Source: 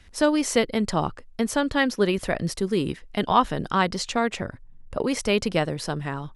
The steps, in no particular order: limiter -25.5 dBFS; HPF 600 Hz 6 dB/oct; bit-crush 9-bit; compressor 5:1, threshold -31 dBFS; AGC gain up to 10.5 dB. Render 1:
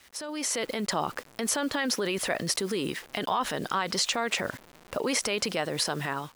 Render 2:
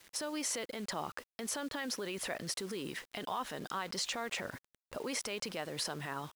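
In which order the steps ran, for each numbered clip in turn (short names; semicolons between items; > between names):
bit-crush > limiter > HPF > compressor > AGC; compressor > AGC > limiter > HPF > bit-crush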